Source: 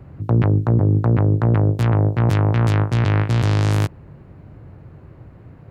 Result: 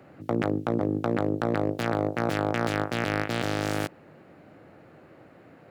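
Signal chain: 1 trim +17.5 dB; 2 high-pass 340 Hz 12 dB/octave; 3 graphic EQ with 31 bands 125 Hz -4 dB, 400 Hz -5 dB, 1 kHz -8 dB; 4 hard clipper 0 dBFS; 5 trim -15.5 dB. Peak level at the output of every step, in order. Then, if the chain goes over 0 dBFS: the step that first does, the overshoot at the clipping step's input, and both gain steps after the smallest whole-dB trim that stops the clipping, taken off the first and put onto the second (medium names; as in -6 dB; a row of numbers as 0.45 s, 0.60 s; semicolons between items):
+10.5 dBFS, +10.5 dBFS, +10.0 dBFS, 0.0 dBFS, -15.5 dBFS; step 1, 10.0 dB; step 1 +7.5 dB, step 5 -5.5 dB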